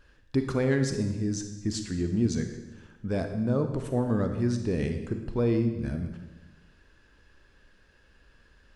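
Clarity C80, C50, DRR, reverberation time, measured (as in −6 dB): 9.5 dB, 7.5 dB, 6.0 dB, 1.1 s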